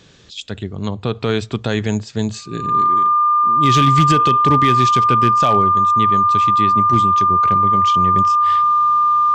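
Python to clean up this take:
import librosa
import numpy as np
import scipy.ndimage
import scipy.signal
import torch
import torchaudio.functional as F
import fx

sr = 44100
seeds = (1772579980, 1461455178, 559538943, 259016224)

y = fx.fix_declip(x, sr, threshold_db=-5.5)
y = fx.notch(y, sr, hz=1200.0, q=30.0)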